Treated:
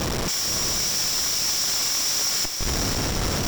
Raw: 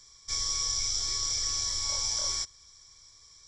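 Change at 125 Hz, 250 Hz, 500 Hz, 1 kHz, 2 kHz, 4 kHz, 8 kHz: +17.5 dB, no reading, +20.0 dB, +12.5 dB, +15.0 dB, +7.0 dB, +7.0 dB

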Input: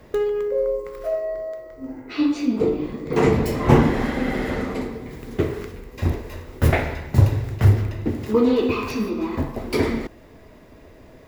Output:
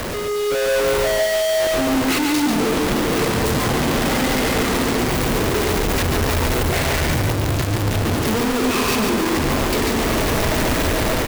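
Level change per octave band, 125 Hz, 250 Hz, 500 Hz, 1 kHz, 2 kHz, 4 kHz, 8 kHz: -0.5 dB, +2.5 dB, +3.5 dB, +7.5 dB, +9.5 dB, +15.0 dB, +19.5 dB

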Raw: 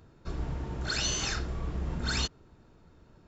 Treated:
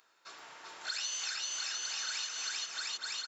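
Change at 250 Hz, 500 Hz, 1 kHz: under -25 dB, -16.0 dB, -5.0 dB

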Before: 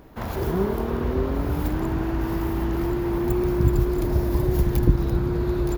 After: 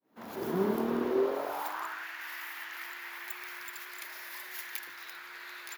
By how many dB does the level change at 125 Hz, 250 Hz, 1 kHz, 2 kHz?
-26.5 dB, -13.5 dB, -5.5 dB, +0.5 dB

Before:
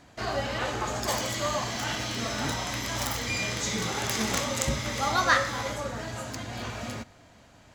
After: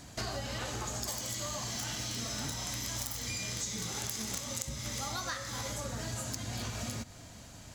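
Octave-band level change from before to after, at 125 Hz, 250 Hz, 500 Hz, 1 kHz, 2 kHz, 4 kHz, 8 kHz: -5.0 dB, -8.0 dB, -11.5 dB, -13.0 dB, -12.5 dB, -6.0 dB, -2.0 dB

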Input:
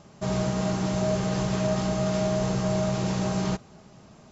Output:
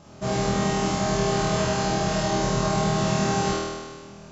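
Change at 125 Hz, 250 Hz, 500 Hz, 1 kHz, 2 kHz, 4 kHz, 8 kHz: +0.5 dB, +0.5 dB, +2.5 dB, +8.0 dB, +7.5 dB, +7.0 dB, no reading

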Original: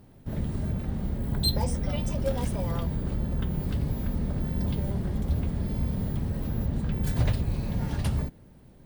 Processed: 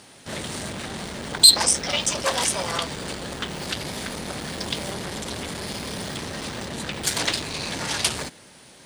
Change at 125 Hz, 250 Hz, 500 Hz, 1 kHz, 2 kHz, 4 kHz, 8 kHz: -10.0 dB, -3.0 dB, +4.5 dB, +10.5 dB, +16.0 dB, +16.5 dB, +22.0 dB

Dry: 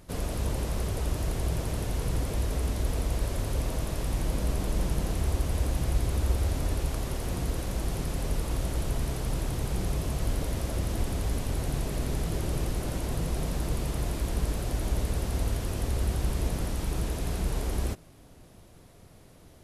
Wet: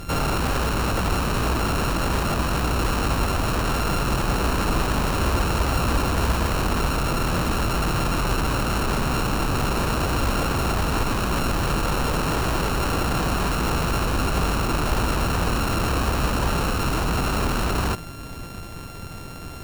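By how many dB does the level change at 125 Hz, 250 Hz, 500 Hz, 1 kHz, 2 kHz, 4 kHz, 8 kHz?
+5.0 dB, +9.5 dB, +9.0 dB, +16.5 dB, +15.5 dB, +12.5 dB, +7.5 dB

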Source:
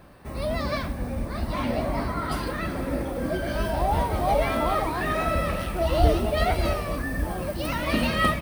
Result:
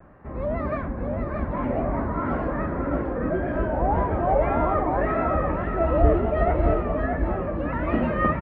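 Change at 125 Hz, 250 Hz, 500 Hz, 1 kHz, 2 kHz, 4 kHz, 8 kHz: +1.5 dB, +2.5 dB, +3.0 dB, +1.0 dB, -3.0 dB, under -15 dB, under -40 dB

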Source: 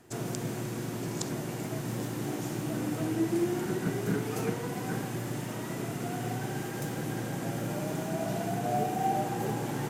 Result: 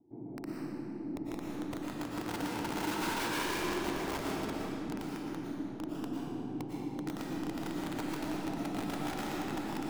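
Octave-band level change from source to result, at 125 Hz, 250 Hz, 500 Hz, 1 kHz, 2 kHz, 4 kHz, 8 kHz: -11.0 dB, -3.0 dB, -6.5 dB, -5.0 dB, -0.5 dB, +1.0 dB, -6.0 dB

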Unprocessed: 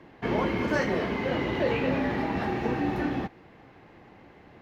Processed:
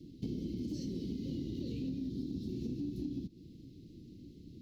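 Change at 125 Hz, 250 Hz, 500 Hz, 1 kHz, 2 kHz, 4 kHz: -7.5 dB, -8.0 dB, -20.0 dB, under -40 dB, under -35 dB, -14.0 dB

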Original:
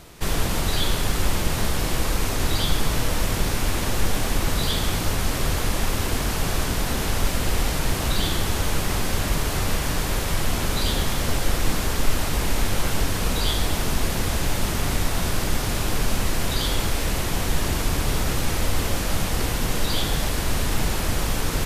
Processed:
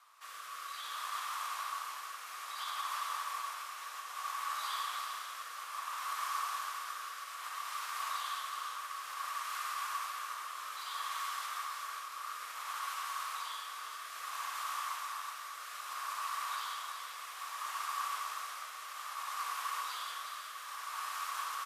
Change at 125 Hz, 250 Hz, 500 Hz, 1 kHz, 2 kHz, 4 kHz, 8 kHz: under -40 dB, under -40 dB, -32.0 dB, -6.0 dB, -13.0 dB, -16.0 dB, -17.0 dB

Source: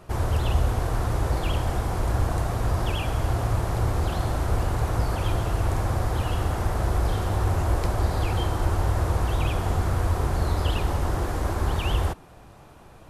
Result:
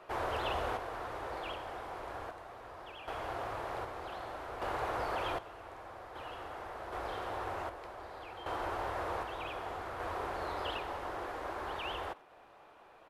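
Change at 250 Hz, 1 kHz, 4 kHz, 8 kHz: -16.5 dB, -6.5 dB, -9.5 dB, -19.5 dB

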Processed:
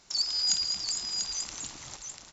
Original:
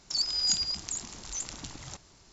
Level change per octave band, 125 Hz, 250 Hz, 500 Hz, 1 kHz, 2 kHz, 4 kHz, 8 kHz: -7.0 dB, -5.0 dB, -2.0 dB, 0.0 dB, +1.0 dB, +1.5 dB, no reading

